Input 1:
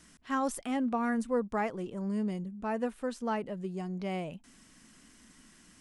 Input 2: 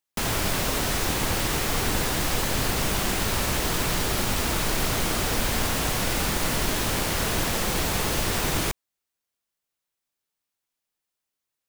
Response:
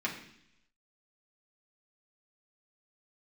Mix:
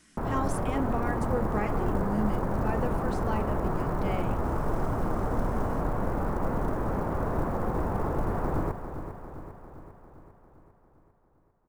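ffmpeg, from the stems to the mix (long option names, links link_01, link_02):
-filter_complex "[0:a]volume=-3.5dB,asplit=2[link_01][link_02];[link_02]volume=-9.5dB[link_03];[1:a]lowpass=frequency=1200:width=0.5412,lowpass=frequency=1200:width=1.3066,acrusher=bits=8:mode=log:mix=0:aa=0.000001,volume=-1.5dB,asplit=2[link_04][link_05];[link_05]volume=-10dB[link_06];[2:a]atrim=start_sample=2205[link_07];[link_03][link_07]afir=irnorm=-1:irlink=0[link_08];[link_06]aecho=0:1:399|798|1197|1596|1995|2394|2793|3192|3591:1|0.58|0.336|0.195|0.113|0.0656|0.0381|0.0221|0.0128[link_09];[link_01][link_04][link_08][link_09]amix=inputs=4:normalize=0"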